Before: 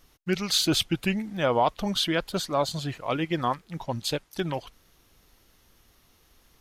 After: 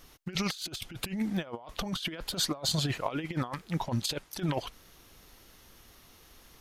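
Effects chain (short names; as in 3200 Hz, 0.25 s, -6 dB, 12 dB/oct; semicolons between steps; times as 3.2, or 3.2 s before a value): low shelf 150 Hz -3 dB; negative-ratio compressor -32 dBFS, ratio -0.5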